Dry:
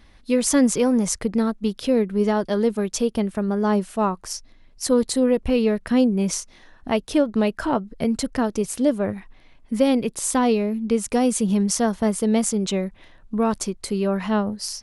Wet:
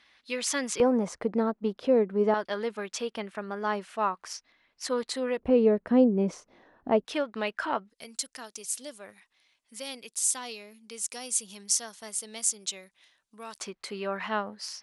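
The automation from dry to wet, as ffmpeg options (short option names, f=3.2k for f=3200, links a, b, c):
-af "asetnsamples=n=441:p=0,asendcmd='0.8 bandpass f 700;2.34 bandpass f 1900;5.39 bandpass f 490;7.05 bandpass f 2000;7.9 bandpass f 7700;13.6 bandpass f 1800',bandpass=f=2.7k:t=q:w=0.79:csg=0"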